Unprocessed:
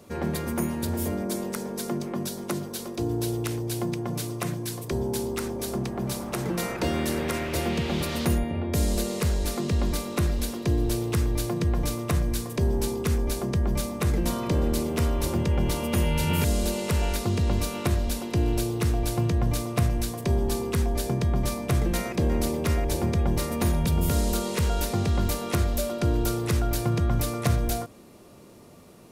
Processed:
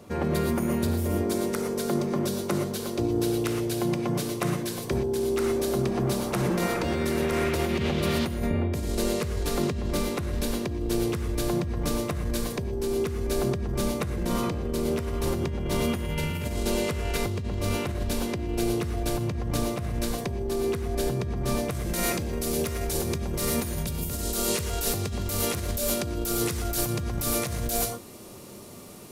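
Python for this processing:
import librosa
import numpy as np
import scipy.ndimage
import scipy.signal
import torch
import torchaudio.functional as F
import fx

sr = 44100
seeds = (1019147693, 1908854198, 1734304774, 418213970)

y = fx.high_shelf(x, sr, hz=4100.0, db=fx.steps((0.0, -5.0), (21.7, 9.0)))
y = fx.rev_gated(y, sr, seeds[0], gate_ms=140, shape='rising', drr_db=3.5)
y = fx.over_compress(y, sr, threshold_db=-27.0, ratio=-1.0)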